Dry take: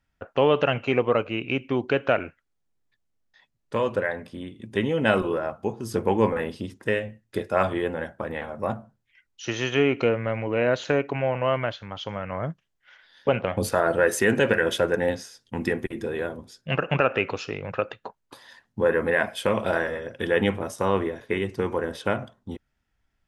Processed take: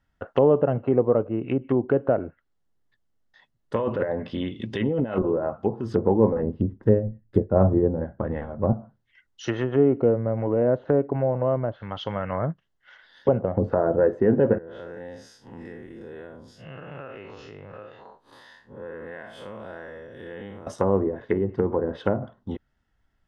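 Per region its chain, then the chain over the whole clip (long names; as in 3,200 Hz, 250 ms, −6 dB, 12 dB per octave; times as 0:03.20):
0:03.76–0:05.18: flat-topped bell 3,600 Hz +8.5 dB + compressor whose output falls as the input rises −27 dBFS
0:06.42–0:08.73: spectral tilt −3.5 dB per octave + expander for the loud parts, over −32 dBFS
0:14.58–0:20.67: spectrum smeared in time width 117 ms + downward compressor 2.5 to 1, threshold −46 dBFS
whole clip: treble cut that deepens with the level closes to 630 Hz, closed at −22 dBFS; high-shelf EQ 5,100 Hz −10.5 dB; notch filter 2,400 Hz, Q 6.1; level +3.5 dB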